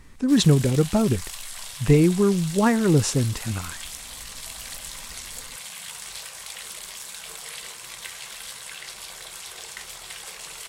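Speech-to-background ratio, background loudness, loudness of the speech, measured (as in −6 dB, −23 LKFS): 14.5 dB, −35.5 LKFS, −21.0 LKFS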